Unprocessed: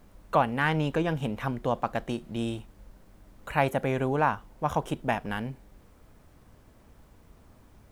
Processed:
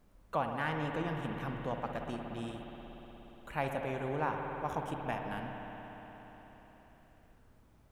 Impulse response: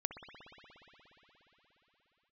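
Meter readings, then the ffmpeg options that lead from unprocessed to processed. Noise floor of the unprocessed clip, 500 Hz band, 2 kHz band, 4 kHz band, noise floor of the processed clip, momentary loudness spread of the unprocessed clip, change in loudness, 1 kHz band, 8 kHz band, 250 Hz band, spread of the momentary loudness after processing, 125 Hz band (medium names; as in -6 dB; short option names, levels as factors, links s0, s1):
-57 dBFS, -8.5 dB, -8.5 dB, -8.5 dB, -63 dBFS, 9 LU, -8.5 dB, -8.0 dB, -10.0 dB, -8.5 dB, 17 LU, -9.0 dB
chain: -filter_complex "[1:a]atrim=start_sample=2205[s0];[0:a][s0]afir=irnorm=-1:irlink=0,volume=0.376"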